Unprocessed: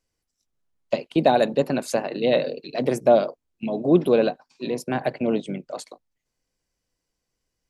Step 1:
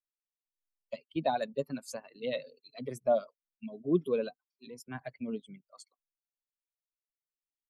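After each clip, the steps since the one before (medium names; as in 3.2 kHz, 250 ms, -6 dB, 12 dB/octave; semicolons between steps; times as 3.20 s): expander on every frequency bin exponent 2; trim -8.5 dB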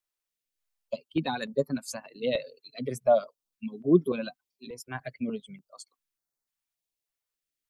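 step-sequenced notch 3.4 Hz 210–2800 Hz; trim +7 dB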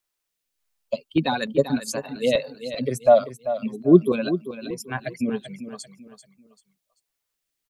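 feedback delay 390 ms, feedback 32%, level -11.5 dB; trim +7 dB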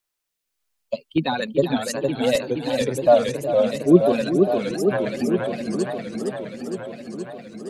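modulated delay 466 ms, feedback 74%, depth 201 cents, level -4.5 dB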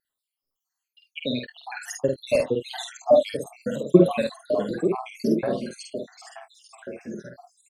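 random holes in the spectrogram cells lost 80%; wow and flutter 23 cents; early reflections 49 ms -3.5 dB, 72 ms -13.5 dB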